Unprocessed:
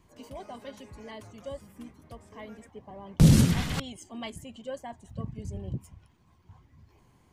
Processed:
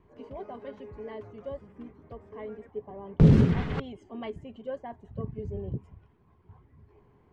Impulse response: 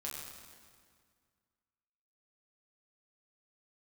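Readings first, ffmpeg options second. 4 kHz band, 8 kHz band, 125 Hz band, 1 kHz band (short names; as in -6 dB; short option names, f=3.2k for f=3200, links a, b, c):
-11.5 dB, under -20 dB, 0.0 dB, 0.0 dB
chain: -af "lowpass=1.9k,equalizer=f=420:t=o:w=0.25:g=11.5"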